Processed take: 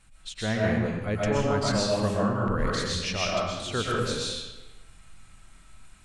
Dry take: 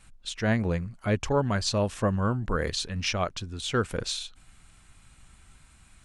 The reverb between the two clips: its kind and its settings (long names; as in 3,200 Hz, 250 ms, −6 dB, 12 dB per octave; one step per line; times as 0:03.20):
comb and all-pass reverb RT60 1.1 s, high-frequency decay 0.8×, pre-delay 85 ms, DRR −4.5 dB
level −4 dB